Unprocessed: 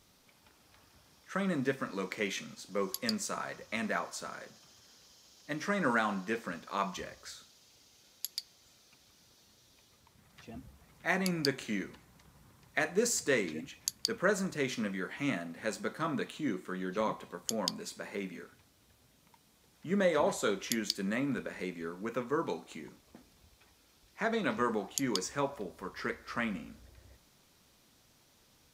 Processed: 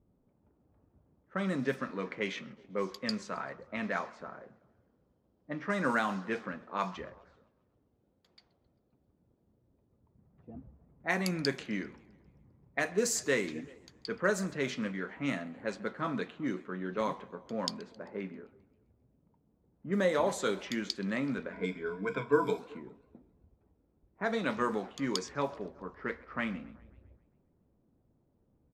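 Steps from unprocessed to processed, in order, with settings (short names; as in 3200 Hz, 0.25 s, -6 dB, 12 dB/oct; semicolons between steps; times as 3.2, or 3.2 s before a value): 21.52–22.59 ripple EQ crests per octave 1.7, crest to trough 17 dB; speakerphone echo 0.38 s, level -24 dB; low-pass opened by the level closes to 410 Hz, open at -27 dBFS; warbling echo 0.132 s, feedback 51%, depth 198 cents, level -23.5 dB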